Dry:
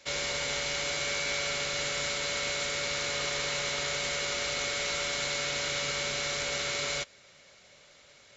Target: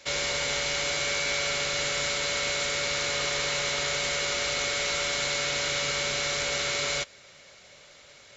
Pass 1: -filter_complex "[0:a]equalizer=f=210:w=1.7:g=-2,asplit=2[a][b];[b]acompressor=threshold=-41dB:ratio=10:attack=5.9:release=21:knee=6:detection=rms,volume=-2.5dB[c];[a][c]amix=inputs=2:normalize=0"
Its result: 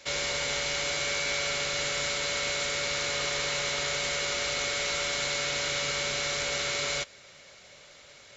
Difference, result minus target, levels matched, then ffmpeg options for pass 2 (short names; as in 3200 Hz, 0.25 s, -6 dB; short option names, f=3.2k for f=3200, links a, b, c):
compressor: peak gain reduction +7 dB
-filter_complex "[0:a]equalizer=f=210:w=1.7:g=-2,asplit=2[a][b];[b]acompressor=threshold=-33dB:ratio=10:attack=5.9:release=21:knee=6:detection=rms,volume=-2.5dB[c];[a][c]amix=inputs=2:normalize=0"